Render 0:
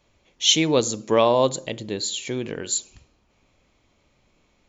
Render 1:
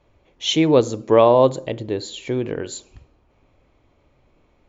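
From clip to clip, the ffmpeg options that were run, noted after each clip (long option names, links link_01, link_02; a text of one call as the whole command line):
ffmpeg -i in.wav -af "lowpass=frequency=1000:poles=1,equalizer=frequency=200:width_type=o:width=0.35:gain=-9,volume=6.5dB" out.wav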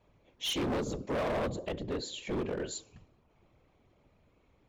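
ffmpeg -i in.wav -filter_complex "[0:a]acrossover=split=310[link_01][link_02];[link_02]acompressor=threshold=-20dB:ratio=3[link_03];[link_01][link_03]amix=inputs=2:normalize=0,afftfilt=real='hypot(re,im)*cos(2*PI*random(0))':imag='hypot(re,im)*sin(2*PI*random(1))':win_size=512:overlap=0.75,asoftclip=type=hard:threshold=-28.5dB,volume=-1dB" out.wav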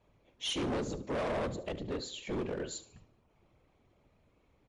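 ffmpeg -i in.wav -af "aecho=1:1:73|146|219:0.141|0.0537|0.0204,volume=-1.5dB" -ar 24000 -c:a libmp3lame -b:a 64k out.mp3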